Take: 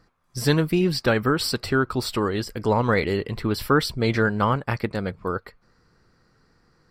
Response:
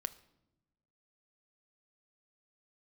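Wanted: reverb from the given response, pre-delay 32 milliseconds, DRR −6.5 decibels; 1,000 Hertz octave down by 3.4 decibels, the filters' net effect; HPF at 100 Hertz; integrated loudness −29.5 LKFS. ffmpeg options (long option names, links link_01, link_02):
-filter_complex "[0:a]highpass=100,equalizer=frequency=1000:width_type=o:gain=-4.5,asplit=2[link_01][link_02];[1:a]atrim=start_sample=2205,adelay=32[link_03];[link_02][link_03]afir=irnorm=-1:irlink=0,volume=8dB[link_04];[link_01][link_04]amix=inputs=2:normalize=0,volume=-12.5dB"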